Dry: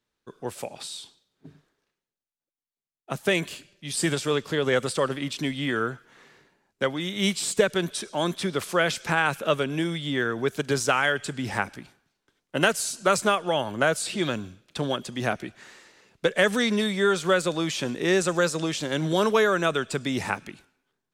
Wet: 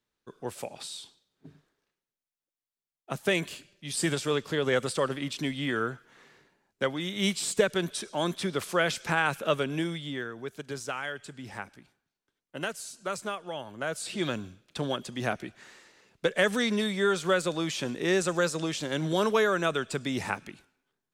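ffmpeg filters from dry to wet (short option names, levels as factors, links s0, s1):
-af "volume=1.88,afade=t=out:st=9.77:d=0.54:silence=0.354813,afade=t=in:st=13.81:d=0.43:silence=0.375837"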